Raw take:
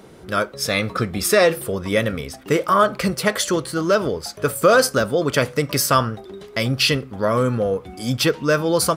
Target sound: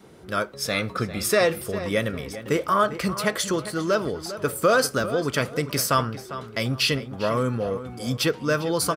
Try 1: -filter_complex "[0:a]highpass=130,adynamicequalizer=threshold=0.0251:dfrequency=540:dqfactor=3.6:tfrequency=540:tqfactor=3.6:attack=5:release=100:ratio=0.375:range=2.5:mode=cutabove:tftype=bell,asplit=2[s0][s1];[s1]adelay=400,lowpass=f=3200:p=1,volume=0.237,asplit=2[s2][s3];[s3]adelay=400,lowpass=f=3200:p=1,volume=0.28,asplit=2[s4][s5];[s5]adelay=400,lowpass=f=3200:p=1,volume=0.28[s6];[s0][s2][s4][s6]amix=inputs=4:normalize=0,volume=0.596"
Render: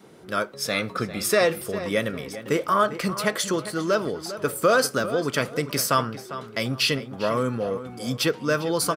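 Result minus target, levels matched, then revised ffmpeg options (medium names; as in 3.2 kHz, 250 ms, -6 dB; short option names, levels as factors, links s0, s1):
125 Hz band -2.5 dB
-filter_complex "[0:a]highpass=42,adynamicequalizer=threshold=0.0251:dfrequency=540:dqfactor=3.6:tfrequency=540:tqfactor=3.6:attack=5:release=100:ratio=0.375:range=2.5:mode=cutabove:tftype=bell,asplit=2[s0][s1];[s1]adelay=400,lowpass=f=3200:p=1,volume=0.237,asplit=2[s2][s3];[s3]adelay=400,lowpass=f=3200:p=1,volume=0.28,asplit=2[s4][s5];[s5]adelay=400,lowpass=f=3200:p=1,volume=0.28[s6];[s0][s2][s4][s6]amix=inputs=4:normalize=0,volume=0.596"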